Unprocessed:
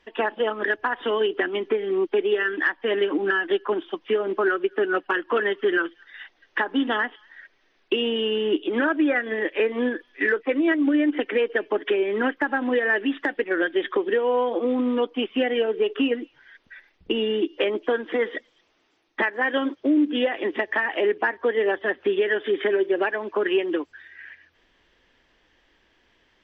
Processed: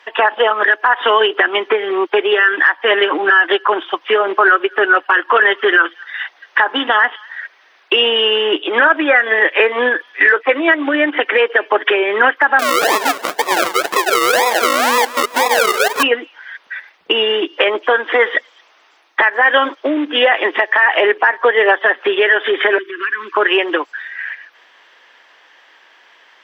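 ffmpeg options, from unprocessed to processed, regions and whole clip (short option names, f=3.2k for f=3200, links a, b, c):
-filter_complex "[0:a]asettb=1/sr,asplit=3[a][b][c];[a]atrim=end=12.594[d];[b]atrim=start=12.59:end=16.03,asetpts=PTS-STARTPTS,afade=t=in:d=0.004:c=qsin,afade=t=out:st=3.436:d=0.004:c=qsin,acrusher=samples=42:mix=1:aa=0.000001:lfo=1:lforange=25.2:lforate=2,aecho=1:1:172|344|516:0.133|0.056|0.0235,atrim=end_sample=151704[e];[c]atrim=start=16.026[f];[d][e]acrossfade=d=0.004:c1=hsin:c2=qsin[g];[g][f]acrossfade=d=0.004:c1=qsin:c2=hsin,asettb=1/sr,asplit=3[h][i][j];[h]atrim=end=22.784[k];[i]atrim=start=22.78:end=23.37,asetpts=PTS-STARTPTS,afade=t=in:d=0.004:c=qsin,afade=t=out:st=0.586:d=0.004:c=qsin,asuperstop=centerf=660:order=8:qfactor=0.86,acompressor=threshold=-32dB:ratio=6:attack=3.2:release=140:knee=1:detection=peak[l];[j]atrim=start=23.366[m];[k][l]acrossfade=d=0.004:c1=hsin:c2=qsin[n];[n][m]acrossfade=d=0.004:c1=qsin:c2=hsin,highpass=650,equalizer=f=1.1k:w=0.67:g=6,alimiter=level_in=14.5dB:limit=-1dB:release=50:level=0:latency=1,volume=-1dB"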